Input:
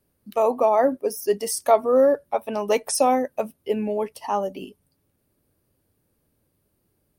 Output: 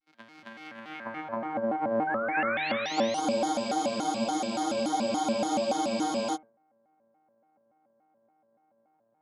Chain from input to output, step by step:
samples sorted by size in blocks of 256 samples
Butterworth high-pass 170 Hz 48 dB per octave
bass and treble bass +7 dB, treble −14 dB
compressor whose output falls as the input rises −23 dBFS, ratio −1
hollow resonant body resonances 350/910/1,500/2,400 Hz, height 16 dB, ringing for 35 ms
speed change −22%
sound drawn into the spectrogram rise, 0:02.34–0:03.55, 1,300–10,000 Hz −12 dBFS
band-pass filter sweep 4,100 Hz → 690 Hz, 0:00.69–0:01.62
backwards echo 271 ms −3.5 dB
reverb whose tail is shaped and stops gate 480 ms flat, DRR 4.5 dB
frozen spectrum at 0:03.23, 3.11 s
pitch modulation by a square or saw wave square 3.5 Hz, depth 250 cents
level −6.5 dB

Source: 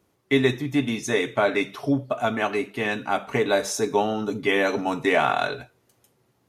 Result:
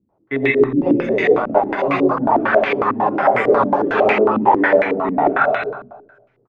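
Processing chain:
far-end echo of a speakerphone 350 ms, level −19 dB
comb and all-pass reverb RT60 0.76 s, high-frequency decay 0.75×, pre-delay 70 ms, DRR −4 dB
delay with pitch and tempo change per echo 531 ms, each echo +5 semitones, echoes 3
0:01.38–0:01.79: power curve on the samples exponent 1.4
low-pass on a step sequencer 11 Hz 240–2,200 Hz
level −3.5 dB

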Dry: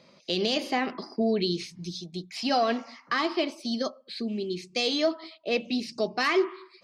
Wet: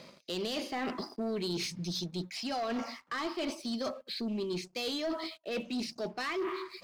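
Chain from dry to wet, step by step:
reversed playback
downward compressor 5 to 1, threshold −39 dBFS, peak gain reduction 17.5 dB
reversed playback
leveller curve on the samples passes 2

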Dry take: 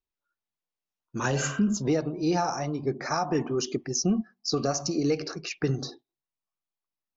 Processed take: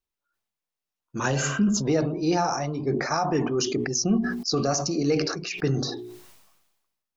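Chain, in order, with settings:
mains-hum notches 60/120/180/240/300/360/420 Hz
level that may fall only so fast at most 48 dB per second
level +2 dB

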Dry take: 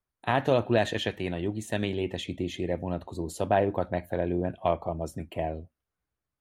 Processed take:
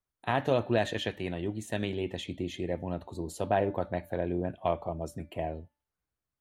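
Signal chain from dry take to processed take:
hum removal 291.6 Hz, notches 16
level −3 dB

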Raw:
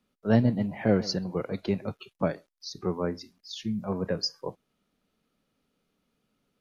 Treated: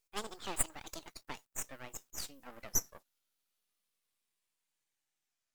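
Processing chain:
gliding playback speed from 188% → 50%
first difference
half-wave rectification
level +5 dB

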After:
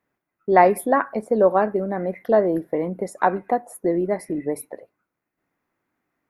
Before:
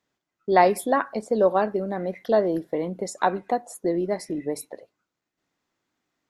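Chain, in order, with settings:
flat-topped bell 4,900 Hz −13 dB
level +3 dB

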